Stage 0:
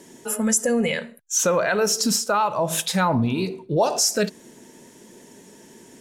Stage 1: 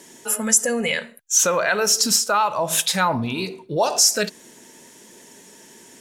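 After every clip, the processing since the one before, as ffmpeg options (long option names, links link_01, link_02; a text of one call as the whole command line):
ffmpeg -i in.wav -af "tiltshelf=frequency=670:gain=-5" out.wav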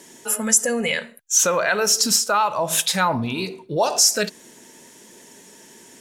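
ffmpeg -i in.wav -af anull out.wav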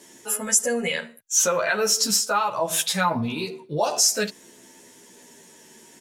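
ffmpeg -i in.wav -filter_complex "[0:a]asplit=2[link_01][link_02];[link_02]adelay=11.5,afreqshift=-0.47[link_03];[link_01][link_03]amix=inputs=2:normalize=1" out.wav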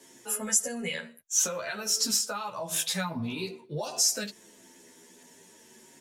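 ffmpeg -i in.wav -filter_complex "[0:a]acrossover=split=240|3000[link_01][link_02][link_03];[link_02]acompressor=threshold=-28dB:ratio=6[link_04];[link_01][link_04][link_03]amix=inputs=3:normalize=0,flanger=delay=7.6:depth=4.6:regen=-24:speed=0.5:shape=sinusoidal,volume=-1.5dB" out.wav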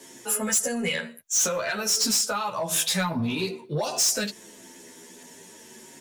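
ffmpeg -i in.wav -af "asoftclip=type=tanh:threshold=-25.5dB,volume=7.5dB" out.wav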